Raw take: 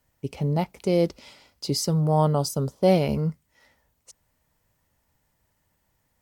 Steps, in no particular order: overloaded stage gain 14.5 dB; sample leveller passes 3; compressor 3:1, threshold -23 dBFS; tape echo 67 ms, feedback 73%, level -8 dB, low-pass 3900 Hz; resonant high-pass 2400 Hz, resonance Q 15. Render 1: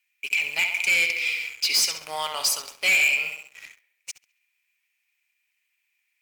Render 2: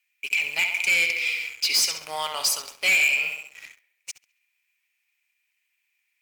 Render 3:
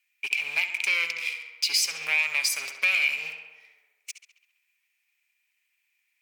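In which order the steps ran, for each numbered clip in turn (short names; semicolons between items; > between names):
resonant high-pass > compressor > tape echo > overloaded stage > sample leveller; resonant high-pass > tape echo > compressor > overloaded stage > sample leveller; sample leveller > resonant high-pass > tape echo > compressor > overloaded stage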